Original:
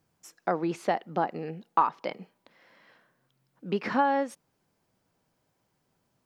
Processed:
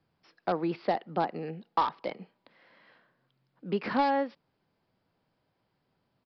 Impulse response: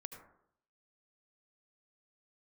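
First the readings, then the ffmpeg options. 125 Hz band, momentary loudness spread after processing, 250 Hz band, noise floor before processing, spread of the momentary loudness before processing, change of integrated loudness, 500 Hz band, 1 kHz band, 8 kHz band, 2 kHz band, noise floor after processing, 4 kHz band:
-1.0 dB, 12 LU, -1.0 dB, -76 dBFS, 13 LU, -2.0 dB, -1.0 dB, -2.5 dB, n/a, -3.0 dB, -78 dBFS, +1.5 dB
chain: -filter_complex "[0:a]acrossover=split=270|1300[a][b][c];[c]aeval=exprs='(mod(35.5*val(0)+1,2)-1)/35.5':c=same[d];[a][b][d]amix=inputs=3:normalize=0,aresample=11025,aresample=44100,volume=-1dB"

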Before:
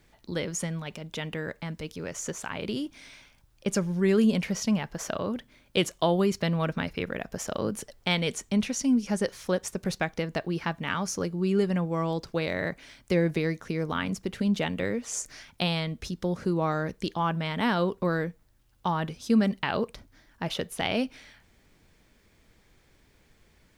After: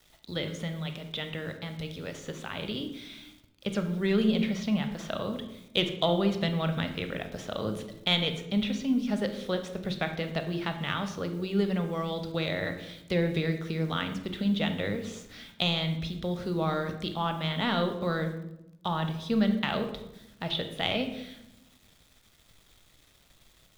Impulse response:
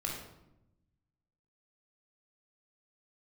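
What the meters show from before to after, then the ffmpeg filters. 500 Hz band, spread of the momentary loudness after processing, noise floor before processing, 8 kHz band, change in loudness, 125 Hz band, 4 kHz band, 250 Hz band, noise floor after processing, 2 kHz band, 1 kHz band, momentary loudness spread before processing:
-2.5 dB, 11 LU, -63 dBFS, -13.5 dB, -1.5 dB, -1.0 dB, +3.5 dB, -2.0 dB, -62 dBFS, -1.5 dB, -2.5 dB, 10 LU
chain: -filter_complex "[0:a]equalizer=f=3.6k:w=2.7:g=15,acrossover=split=480|3600[a][b][c];[c]acompressor=threshold=-49dB:ratio=6[d];[a][b][d]amix=inputs=3:normalize=0,aeval=exprs='0.473*(cos(1*acos(clip(val(0)/0.473,-1,1)))-cos(1*PI/2))+0.0668*(cos(3*acos(clip(val(0)/0.473,-1,1)))-cos(3*PI/2))':c=same,asoftclip=type=tanh:threshold=-10dB,acrusher=bits=9:mix=0:aa=0.000001,asplit=2[e][f];[1:a]atrim=start_sample=2205[g];[f][g]afir=irnorm=-1:irlink=0,volume=-3.5dB[h];[e][h]amix=inputs=2:normalize=0,volume=-2.5dB"

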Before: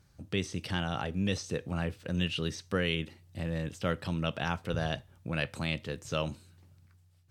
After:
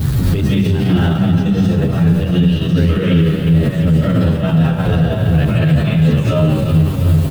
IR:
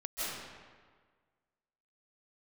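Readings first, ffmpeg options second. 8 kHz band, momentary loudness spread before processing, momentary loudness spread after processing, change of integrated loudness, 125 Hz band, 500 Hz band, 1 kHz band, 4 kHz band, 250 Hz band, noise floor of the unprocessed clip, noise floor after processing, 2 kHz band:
n/a, 5 LU, 2 LU, +20.0 dB, +24.0 dB, +15.5 dB, +12.0 dB, +9.0 dB, +22.5 dB, -63 dBFS, -18 dBFS, +9.5 dB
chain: -filter_complex "[0:a]aeval=exprs='val(0)+0.5*0.0112*sgn(val(0))':c=same,equalizer=f=130:t=o:w=2.5:g=14,acrossover=split=3300[a][b];[b]acompressor=threshold=-52dB:ratio=4:attack=1:release=60[c];[a][c]amix=inputs=2:normalize=0,lowshelf=f=250:g=4.5[d];[1:a]atrim=start_sample=2205[e];[d][e]afir=irnorm=-1:irlink=0,aexciter=amount=1.3:drive=7.1:freq=3.3k,acompressor=threshold=-23dB:ratio=6,aecho=1:1:360|720|1080|1440|1800|2160:0.355|0.195|0.107|0.059|0.0325|0.0179,alimiter=level_in=26.5dB:limit=-1dB:release=50:level=0:latency=1,asplit=2[f][g];[g]adelay=9.5,afreqshift=-2.8[h];[f][h]amix=inputs=2:normalize=1,volume=-3dB"

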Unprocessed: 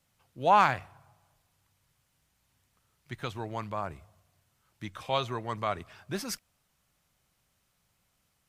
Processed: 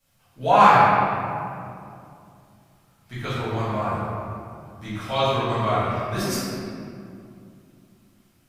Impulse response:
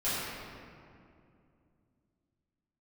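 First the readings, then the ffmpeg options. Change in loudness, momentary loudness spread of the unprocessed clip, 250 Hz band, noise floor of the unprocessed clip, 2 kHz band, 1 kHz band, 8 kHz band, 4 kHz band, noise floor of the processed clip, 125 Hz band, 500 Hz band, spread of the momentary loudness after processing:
+9.0 dB, 18 LU, +12.0 dB, -75 dBFS, +9.0 dB, +10.0 dB, +7.5 dB, +8.0 dB, -61 dBFS, +12.5 dB, +10.0 dB, 24 LU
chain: -filter_complex "[0:a]highshelf=f=7.2k:g=4.5[a];[1:a]atrim=start_sample=2205[b];[a][b]afir=irnorm=-1:irlink=0"

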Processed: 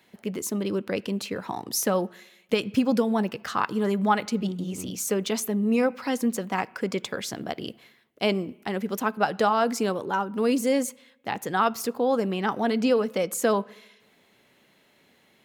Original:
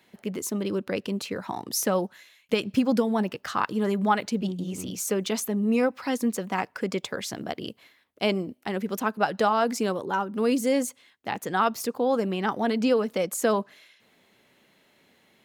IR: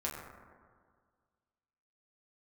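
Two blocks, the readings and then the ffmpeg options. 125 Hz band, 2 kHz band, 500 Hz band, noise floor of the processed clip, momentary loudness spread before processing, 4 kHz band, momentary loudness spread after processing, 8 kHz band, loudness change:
+0.5 dB, +0.5 dB, +0.5 dB, -62 dBFS, 9 LU, +0.5 dB, 9 LU, +0.5 dB, +0.5 dB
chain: -filter_complex "[0:a]asplit=2[a][b];[1:a]atrim=start_sample=2205,asetrate=83790,aresample=44100,highshelf=f=11k:g=11.5[c];[b][c]afir=irnorm=-1:irlink=0,volume=-17dB[d];[a][d]amix=inputs=2:normalize=0"

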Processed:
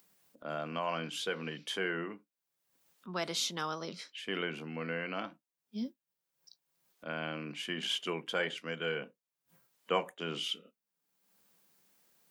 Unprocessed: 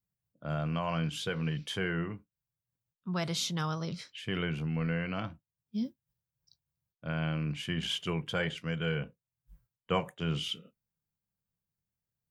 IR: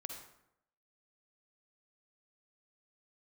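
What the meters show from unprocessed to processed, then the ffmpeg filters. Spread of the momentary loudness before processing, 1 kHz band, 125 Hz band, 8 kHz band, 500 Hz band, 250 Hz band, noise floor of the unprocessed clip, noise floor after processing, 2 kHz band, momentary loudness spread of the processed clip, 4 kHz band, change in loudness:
8 LU, 0.0 dB, -14.0 dB, 0.0 dB, 0.0 dB, -6.5 dB, under -85 dBFS, under -85 dBFS, 0.0 dB, 9 LU, 0.0 dB, -2.5 dB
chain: -af "highpass=f=240:w=0.5412,highpass=f=240:w=1.3066,acompressor=mode=upward:threshold=-50dB:ratio=2.5"

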